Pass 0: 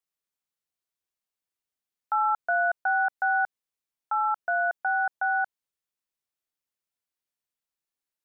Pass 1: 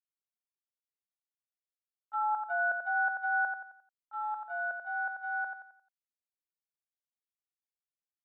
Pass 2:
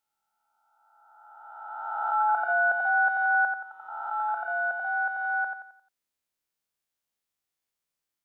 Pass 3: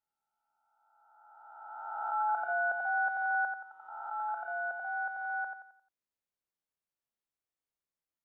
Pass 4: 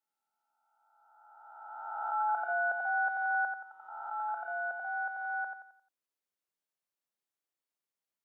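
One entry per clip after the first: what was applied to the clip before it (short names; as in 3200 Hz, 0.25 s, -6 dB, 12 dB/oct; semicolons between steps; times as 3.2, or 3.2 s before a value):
gate -24 dBFS, range -21 dB; on a send: feedback echo 88 ms, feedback 39%, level -6 dB; on the sum: gain -6 dB
spectral swells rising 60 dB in 1.99 s; gain +6 dB
high shelf 2000 Hz -9 dB; gain -5 dB
HPF 190 Hz 12 dB/oct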